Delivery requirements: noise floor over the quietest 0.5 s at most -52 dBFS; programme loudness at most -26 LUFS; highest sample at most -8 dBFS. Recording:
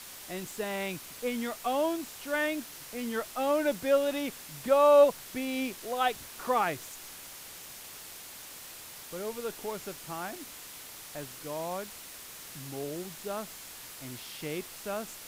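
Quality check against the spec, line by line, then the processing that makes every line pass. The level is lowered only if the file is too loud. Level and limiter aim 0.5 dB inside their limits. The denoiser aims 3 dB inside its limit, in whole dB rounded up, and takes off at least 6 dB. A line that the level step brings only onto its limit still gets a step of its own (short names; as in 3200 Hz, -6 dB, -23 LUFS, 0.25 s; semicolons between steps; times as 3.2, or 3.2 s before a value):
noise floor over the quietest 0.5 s -46 dBFS: fail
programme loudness -31.0 LUFS: OK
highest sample -11.5 dBFS: OK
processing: denoiser 9 dB, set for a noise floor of -46 dBFS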